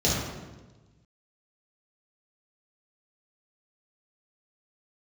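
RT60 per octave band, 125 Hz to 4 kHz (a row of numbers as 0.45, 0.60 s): 1.7, 1.5, 1.3, 1.1, 1.0, 0.95 s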